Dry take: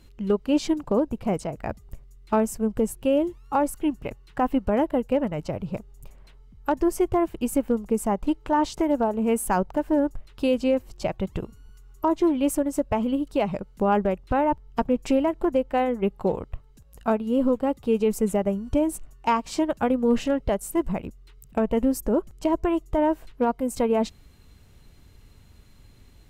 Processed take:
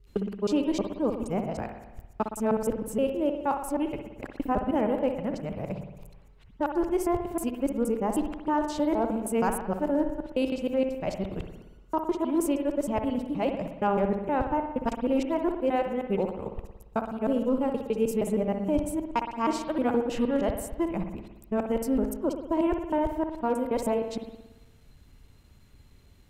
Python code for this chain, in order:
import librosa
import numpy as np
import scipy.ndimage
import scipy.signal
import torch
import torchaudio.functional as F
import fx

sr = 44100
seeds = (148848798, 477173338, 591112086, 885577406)

y = fx.local_reverse(x, sr, ms=157.0)
y = fx.rev_spring(y, sr, rt60_s=1.0, pass_ms=(57,), chirp_ms=50, drr_db=5.5)
y = F.gain(torch.from_numpy(y), -4.5).numpy()